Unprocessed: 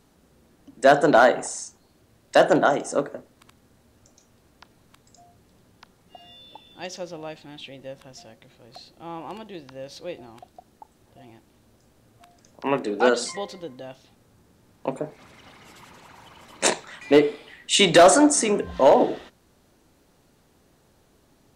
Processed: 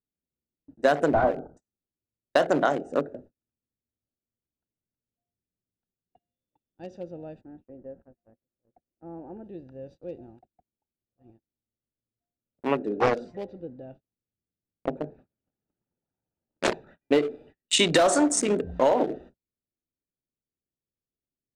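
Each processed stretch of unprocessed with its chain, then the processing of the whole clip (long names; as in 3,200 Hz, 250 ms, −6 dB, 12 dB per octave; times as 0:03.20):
0:01.08–0:01.57: variable-slope delta modulation 16 kbit/s + linear-phase brick-wall low-pass 1,600 Hz
0:07.41–0:09.44: low-pass filter 1,800 Hz 24 dB per octave + parametric band 140 Hz −11 dB 0.24 octaves
0:12.96–0:16.98: low-pass filter 4,000 Hz + highs frequency-modulated by the lows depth 0.45 ms
whole clip: adaptive Wiener filter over 41 samples; noise gate −48 dBFS, range −35 dB; downward compressor 6 to 1, threshold −17 dBFS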